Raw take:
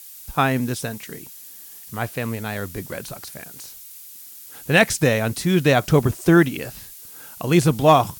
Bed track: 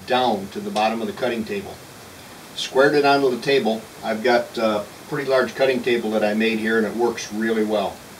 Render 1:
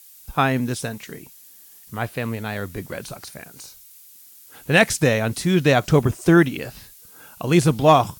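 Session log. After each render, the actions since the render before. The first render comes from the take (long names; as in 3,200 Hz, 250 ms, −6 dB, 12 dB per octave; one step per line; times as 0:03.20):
noise reduction from a noise print 6 dB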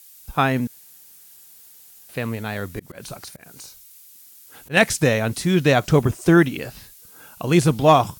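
0:00.67–0:02.09: fill with room tone
0:02.79–0:04.77: volume swells 139 ms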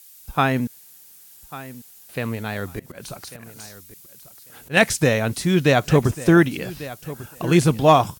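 repeating echo 1,145 ms, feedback 16%, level −16.5 dB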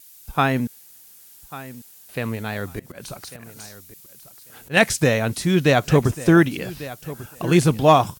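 tape wow and flutter 18 cents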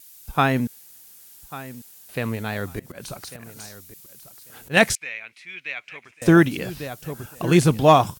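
0:04.95–0:06.22: resonant band-pass 2,300 Hz, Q 6.3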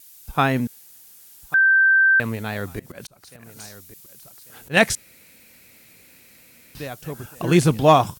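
0:01.54–0:02.20: beep over 1,560 Hz −12 dBFS
0:03.07–0:03.62: fade in
0:04.95–0:06.75: fill with room tone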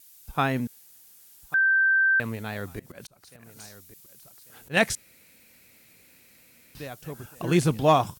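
level −5.5 dB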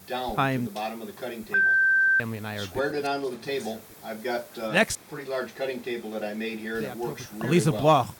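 mix in bed track −12 dB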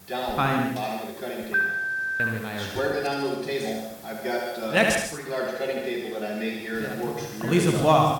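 repeating echo 72 ms, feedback 32%, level −5.5 dB
reverb whose tail is shaped and stops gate 180 ms rising, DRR 4.5 dB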